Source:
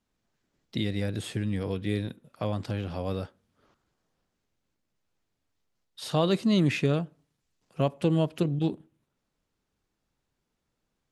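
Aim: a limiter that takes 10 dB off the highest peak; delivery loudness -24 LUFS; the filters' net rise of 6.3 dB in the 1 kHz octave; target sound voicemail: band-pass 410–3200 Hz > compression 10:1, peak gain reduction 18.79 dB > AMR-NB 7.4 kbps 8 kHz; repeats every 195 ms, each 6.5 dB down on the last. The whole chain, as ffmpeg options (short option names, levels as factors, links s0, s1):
-af "equalizer=f=1000:t=o:g=8.5,alimiter=limit=0.106:level=0:latency=1,highpass=410,lowpass=3200,aecho=1:1:195|390|585|780|975|1170:0.473|0.222|0.105|0.0491|0.0231|0.0109,acompressor=threshold=0.00501:ratio=10,volume=25.1" -ar 8000 -c:a libopencore_amrnb -b:a 7400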